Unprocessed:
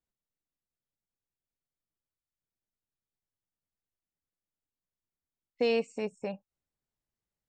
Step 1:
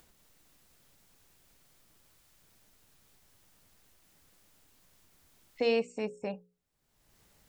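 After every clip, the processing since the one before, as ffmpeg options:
ffmpeg -i in.wav -af "acompressor=mode=upward:threshold=-42dB:ratio=2.5,bandreject=frequency=60:width_type=h:width=6,bandreject=frequency=120:width_type=h:width=6,bandreject=frequency=180:width_type=h:width=6,bandreject=frequency=240:width_type=h:width=6,bandreject=frequency=300:width_type=h:width=6,bandreject=frequency=360:width_type=h:width=6,bandreject=frequency=420:width_type=h:width=6,bandreject=frequency=480:width_type=h:width=6,bandreject=frequency=540:width_type=h:width=6" out.wav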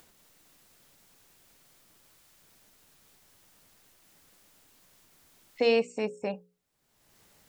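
ffmpeg -i in.wav -af "lowshelf=frequency=100:gain=-10.5,volume=4.5dB" out.wav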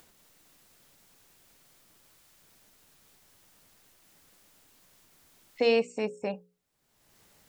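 ffmpeg -i in.wav -af anull out.wav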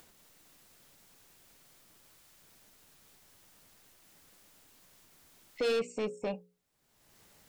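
ffmpeg -i in.wav -af "asoftclip=type=tanh:threshold=-26dB" out.wav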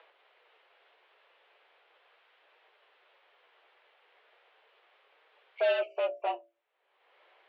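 ffmpeg -i in.wav -af "flanger=delay=6.1:depth=9.8:regen=-41:speed=0.38:shape=triangular,highpass=frequency=280:width_type=q:width=0.5412,highpass=frequency=280:width_type=q:width=1.307,lowpass=frequency=3100:width_type=q:width=0.5176,lowpass=frequency=3100:width_type=q:width=0.7071,lowpass=frequency=3100:width_type=q:width=1.932,afreqshift=160,volume=7.5dB" out.wav

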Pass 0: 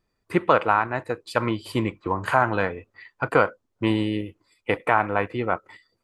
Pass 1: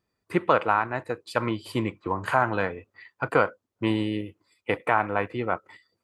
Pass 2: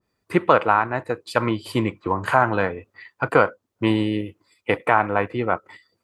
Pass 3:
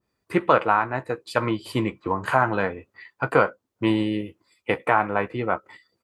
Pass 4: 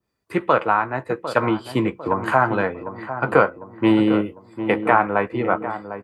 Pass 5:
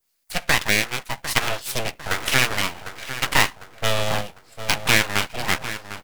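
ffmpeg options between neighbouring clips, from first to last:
ffmpeg -i in.wav -af "highpass=66,volume=-2.5dB" out.wav
ffmpeg -i in.wav -af "adynamicequalizer=threshold=0.0158:dfrequency=1800:dqfactor=0.7:tfrequency=1800:tqfactor=0.7:attack=5:release=100:ratio=0.375:range=2:mode=cutabove:tftype=highshelf,volume=5dB" out.wav
ffmpeg -i in.wav -filter_complex "[0:a]asplit=2[link_01][link_02];[link_02]adelay=15,volume=-11dB[link_03];[link_01][link_03]amix=inputs=2:normalize=0,volume=-2.5dB" out.wav
ffmpeg -i in.wav -filter_complex "[0:a]acrossover=split=130|2200[link_01][link_02][link_03];[link_02]dynaudnorm=framelen=150:gausssize=7:maxgain=11.5dB[link_04];[link_01][link_04][link_03]amix=inputs=3:normalize=0,asplit=2[link_05][link_06];[link_06]adelay=751,lowpass=frequency=1100:poles=1,volume=-10dB,asplit=2[link_07][link_08];[link_08]adelay=751,lowpass=frequency=1100:poles=1,volume=0.51,asplit=2[link_09][link_10];[link_10]adelay=751,lowpass=frequency=1100:poles=1,volume=0.51,asplit=2[link_11][link_12];[link_12]adelay=751,lowpass=frequency=1100:poles=1,volume=0.51,asplit=2[link_13][link_14];[link_14]adelay=751,lowpass=frequency=1100:poles=1,volume=0.51,asplit=2[link_15][link_16];[link_16]adelay=751,lowpass=frequency=1100:poles=1,volume=0.51[link_17];[link_05][link_07][link_09][link_11][link_13][link_15][link_17]amix=inputs=7:normalize=0,volume=-1dB" out.wav
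ffmpeg -i in.wav -af "aeval=exprs='abs(val(0))':channel_layout=same,crystalizer=i=9:c=0,volume=-5.5dB" out.wav

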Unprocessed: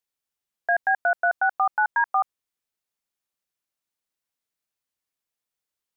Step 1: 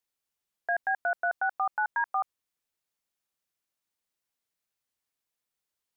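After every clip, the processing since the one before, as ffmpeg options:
ffmpeg -i in.wav -af "alimiter=limit=-20.5dB:level=0:latency=1:release=11" out.wav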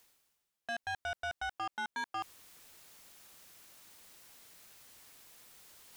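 ffmpeg -i in.wav -af "areverse,acompressor=mode=upward:threshold=-32dB:ratio=2.5,areverse,asoftclip=type=tanh:threshold=-32.5dB,volume=-1.5dB" out.wav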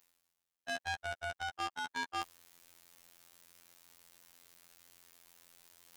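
ffmpeg -i in.wav -af "afftfilt=real='hypot(re,im)*cos(PI*b)':imag='0':win_size=2048:overlap=0.75,aeval=exprs='0.0596*(cos(1*acos(clip(val(0)/0.0596,-1,1)))-cos(1*PI/2))+0.0119*(cos(3*acos(clip(val(0)/0.0596,-1,1)))-cos(3*PI/2))':channel_layout=same,volume=5.5dB" out.wav

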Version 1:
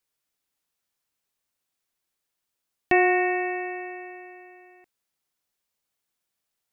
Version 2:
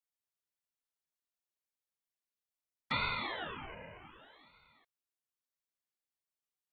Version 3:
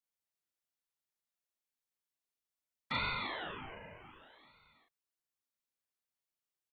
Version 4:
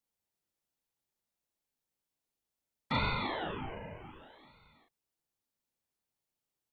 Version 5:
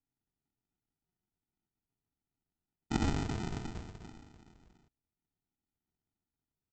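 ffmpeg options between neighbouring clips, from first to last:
ffmpeg -i in.wav -af "afftfilt=real='hypot(re,im)*cos(2*PI*random(0))':imag='hypot(re,im)*sin(2*PI*random(1))':win_size=512:overlap=0.75,aeval=exprs='val(0)*sin(2*PI*980*n/s+980*0.8/0.65*sin(2*PI*0.65*n/s))':channel_layout=same,volume=-6dB" out.wav
ffmpeg -i in.wav -filter_complex "[0:a]asplit=2[link_01][link_02];[link_02]adelay=39,volume=-2.5dB[link_03];[link_01][link_03]amix=inputs=2:normalize=0,volume=-3dB" out.wav
ffmpeg -i in.wav -filter_complex "[0:a]equalizer=frequency=850:width_type=o:width=0.26:gain=4,asplit=2[link_01][link_02];[link_02]adynamicsmooth=sensitivity=0.5:basefreq=820,volume=3dB[link_03];[link_01][link_03]amix=inputs=2:normalize=0,volume=2dB" out.wav
ffmpeg -i in.wav -af "aecho=1:1:2.9:0.36,aresample=16000,acrusher=samples=29:mix=1:aa=0.000001,aresample=44100" out.wav

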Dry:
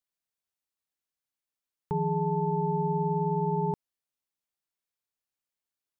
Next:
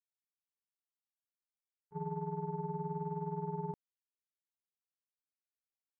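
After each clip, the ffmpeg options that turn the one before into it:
ffmpeg -i in.wav -af "agate=range=-41dB:threshold=-26dB:ratio=16:detection=peak,volume=-6dB" out.wav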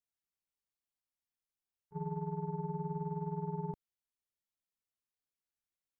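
ffmpeg -i in.wav -af "lowshelf=frequency=130:gain=9.5,volume=-2dB" out.wav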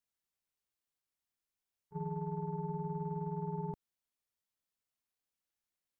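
ffmpeg -i in.wav -af "alimiter=level_in=7.5dB:limit=-24dB:level=0:latency=1:release=19,volume=-7.5dB,volume=1.5dB" out.wav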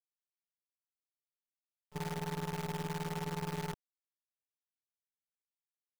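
ffmpeg -i in.wav -af "acrusher=bits=7:dc=4:mix=0:aa=0.000001,volume=-1dB" out.wav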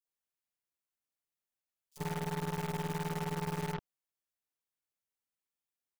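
ffmpeg -i in.wav -filter_complex "[0:a]acrossover=split=4400[link_01][link_02];[link_01]adelay=50[link_03];[link_03][link_02]amix=inputs=2:normalize=0,volume=2dB" out.wav

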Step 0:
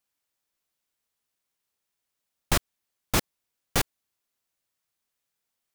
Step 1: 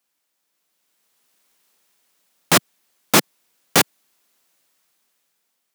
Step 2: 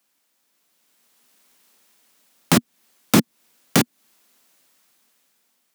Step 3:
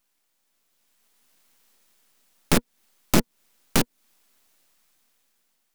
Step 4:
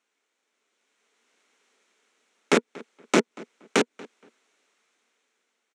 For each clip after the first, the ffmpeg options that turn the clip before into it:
ffmpeg -i in.wav -af "highpass=frequency=160:width=0.5412,highpass=frequency=160:width=1.3066,dynaudnorm=framelen=350:gausssize=7:maxgain=15.5dB,alimiter=level_in=8.5dB:limit=-1dB:release=50:level=0:latency=1,volume=-1dB" out.wav
ffmpeg -i in.wav -filter_complex "[0:a]equalizer=frequency=240:width_type=o:width=0.39:gain=6,acrossover=split=310[link_01][link_02];[link_02]acompressor=threshold=-24dB:ratio=5[link_03];[link_01][link_03]amix=inputs=2:normalize=0,volume=5dB" out.wav
ffmpeg -i in.wav -af "aeval=exprs='max(val(0),0)':channel_layout=same" out.wav
ffmpeg -i in.wav -filter_complex "[0:a]highpass=frequency=220:width=0.5412,highpass=frequency=220:width=1.3066,equalizer=frequency=430:width_type=q:width=4:gain=9,equalizer=frequency=1400:width_type=q:width=4:gain=4,equalizer=frequency=2200:width_type=q:width=4:gain=5,equalizer=frequency=4800:width_type=q:width=4:gain=-8,lowpass=frequency=7200:width=0.5412,lowpass=frequency=7200:width=1.3066,asplit=2[link_01][link_02];[link_02]adelay=235,lowpass=frequency=3100:poles=1,volume=-21dB,asplit=2[link_03][link_04];[link_04]adelay=235,lowpass=frequency=3100:poles=1,volume=0.23[link_05];[link_01][link_03][link_05]amix=inputs=3:normalize=0" out.wav

